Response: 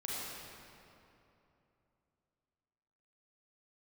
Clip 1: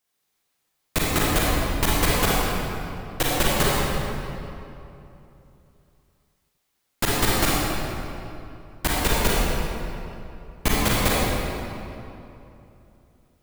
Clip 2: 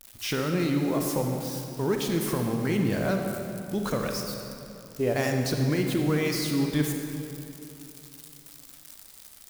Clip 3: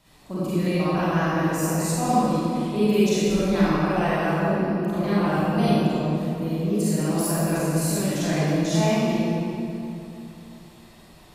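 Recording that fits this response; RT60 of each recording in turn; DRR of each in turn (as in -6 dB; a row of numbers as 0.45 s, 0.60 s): 1; 2.9 s, 2.9 s, 2.9 s; -6.5 dB, 2.5 dB, -11.5 dB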